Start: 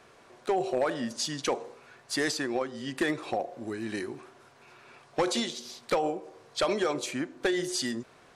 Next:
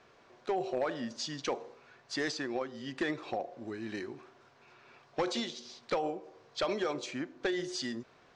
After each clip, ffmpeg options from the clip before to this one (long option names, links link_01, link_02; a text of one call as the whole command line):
ffmpeg -i in.wav -af "lowpass=frequency=6300:width=0.5412,lowpass=frequency=6300:width=1.3066,volume=-5dB" out.wav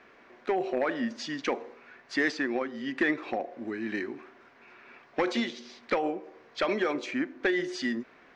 ffmpeg -i in.wav -af "equalizer=frequency=125:width_type=o:width=1:gain=-9,equalizer=frequency=250:width_type=o:width=1:gain=8,equalizer=frequency=2000:width_type=o:width=1:gain=9,equalizer=frequency=4000:width_type=o:width=1:gain=-3,equalizer=frequency=8000:width_type=o:width=1:gain=-7,volume=2dB" out.wav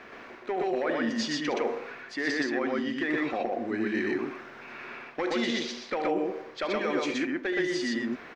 ffmpeg -i in.wav -af "areverse,acompressor=threshold=-37dB:ratio=6,areverse,aecho=1:1:72.89|122.4:0.282|0.891,volume=8.5dB" out.wav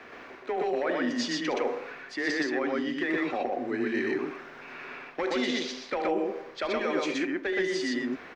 ffmpeg -i in.wav -af "afreqshift=16" out.wav